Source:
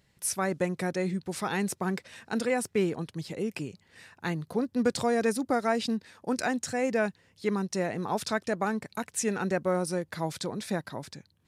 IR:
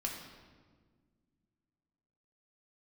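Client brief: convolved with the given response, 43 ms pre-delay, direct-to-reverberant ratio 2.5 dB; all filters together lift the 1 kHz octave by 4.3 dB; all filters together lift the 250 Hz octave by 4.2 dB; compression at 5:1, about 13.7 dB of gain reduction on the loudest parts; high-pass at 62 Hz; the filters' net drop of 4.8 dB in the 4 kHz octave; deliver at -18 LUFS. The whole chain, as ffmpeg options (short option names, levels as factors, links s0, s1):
-filter_complex "[0:a]highpass=62,equalizer=f=250:t=o:g=5,equalizer=f=1000:t=o:g=6,equalizer=f=4000:t=o:g=-6.5,acompressor=threshold=0.02:ratio=5,asplit=2[s0][s1];[1:a]atrim=start_sample=2205,adelay=43[s2];[s1][s2]afir=irnorm=-1:irlink=0,volume=0.631[s3];[s0][s3]amix=inputs=2:normalize=0,volume=7.94"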